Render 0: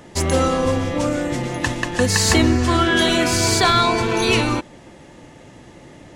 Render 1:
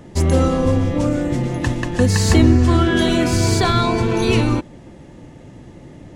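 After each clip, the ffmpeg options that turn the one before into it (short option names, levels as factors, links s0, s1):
-af "lowshelf=f=430:g=12,volume=0.562"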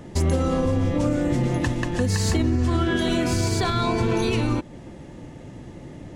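-af "alimiter=limit=0.224:level=0:latency=1:release=242"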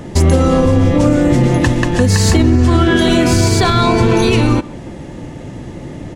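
-filter_complex "[0:a]acontrast=84,asplit=2[s0][s1];[s1]adelay=130,highpass=300,lowpass=3400,asoftclip=type=hard:threshold=0.168,volume=0.126[s2];[s0][s2]amix=inputs=2:normalize=0,volume=1.58"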